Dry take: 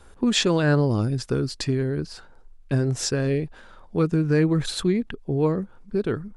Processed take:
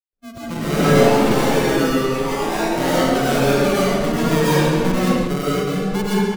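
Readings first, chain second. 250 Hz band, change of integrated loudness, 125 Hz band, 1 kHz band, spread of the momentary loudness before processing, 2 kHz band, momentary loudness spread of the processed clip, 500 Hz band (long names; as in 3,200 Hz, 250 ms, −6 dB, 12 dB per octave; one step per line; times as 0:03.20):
+5.5 dB, +6.0 dB, +1.5 dB, +15.0 dB, 9 LU, +9.5 dB, 7 LU, +8.0 dB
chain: fade in at the beginning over 1.08 s
low-pass filter 2,100 Hz 12 dB per octave
noise reduction from a noise print of the clip's start 22 dB
notch filter 480 Hz, Q 12
comb filter 4.4 ms, depth 82%
in parallel at 0 dB: downward compressor, threshold −28 dBFS, peak gain reduction 13 dB
on the sum: sample-and-hold swept by an LFO 40×, swing 60% 0.43 Hz
gate pattern ".xx.xxx.x.xx" 119 BPM
tape delay 62 ms, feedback 86%, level −4 dB, low-pass 1,000 Hz
comb and all-pass reverb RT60 1.8 s, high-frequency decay 0.85×, pre-delay 80 ms, DRR −8 dB
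delay with pitch and tempo change per echo 217 ms, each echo +4 semitones, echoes 3
level −6 dB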